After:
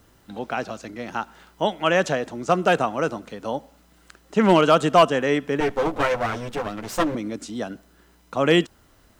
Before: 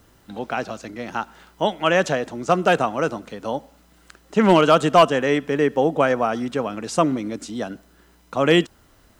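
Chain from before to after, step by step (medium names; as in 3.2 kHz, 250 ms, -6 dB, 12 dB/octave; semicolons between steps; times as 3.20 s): 5.60–7.15 s: comb filter that takes the minimum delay 9.7 ms; trim -1.5 dB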